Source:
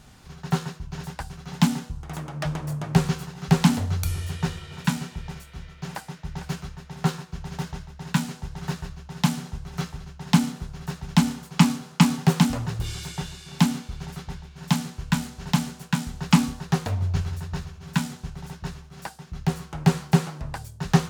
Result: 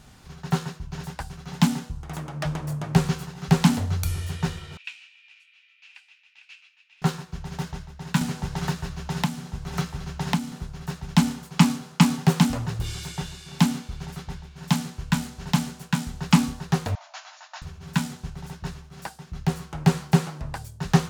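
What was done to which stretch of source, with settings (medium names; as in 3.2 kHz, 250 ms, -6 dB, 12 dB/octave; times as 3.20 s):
4.77–7.02 s: ladder band-pass 2.7 kHz, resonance 80%
8.21–10.52 s: three bands compressed up and down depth 100%
16.95–17.62 s: brick-wall FIR band-pass 570–7200 Hz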